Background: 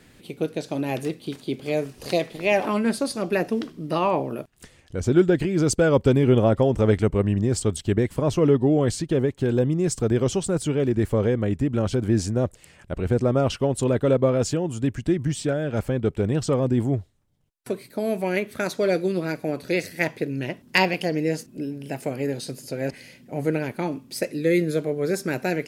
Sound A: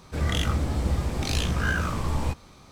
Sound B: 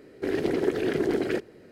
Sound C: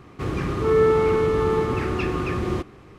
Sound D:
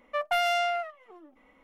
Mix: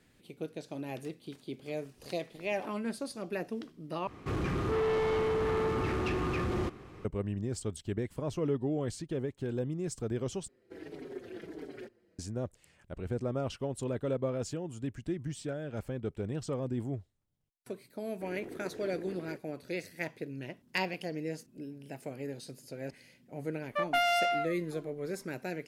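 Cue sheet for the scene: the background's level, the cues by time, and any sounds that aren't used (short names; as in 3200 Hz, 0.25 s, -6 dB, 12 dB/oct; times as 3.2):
background -13 dB
4.07 replace with C -3.5 dB + soft clip -23.5 dBFS
10.48 replace with B -15.5 dB + endless flanger 5.1 ms -1.5 Hz
17.98 add B -18 dB + bell 4300 Hz -12.5 dB
23.62 add D -2 dB
not used: A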